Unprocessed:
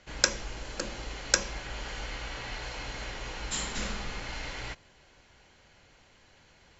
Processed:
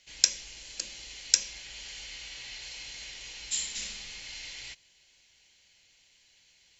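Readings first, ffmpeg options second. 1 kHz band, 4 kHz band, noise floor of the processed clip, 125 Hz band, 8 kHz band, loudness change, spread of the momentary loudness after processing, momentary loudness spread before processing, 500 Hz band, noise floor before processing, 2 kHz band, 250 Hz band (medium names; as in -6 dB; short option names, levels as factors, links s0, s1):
-17.5 dB, +2.0 dB, -64 dBFS, -17.0 dB, no reading, +1.0 dB, 16 LU, 12 LU, -17.0 dB, -61 dBFS, -7.0 dB, -17.0 dB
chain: -af "aexciter=amount=10.2:drive=1.2:freq=2000,volume=0.141"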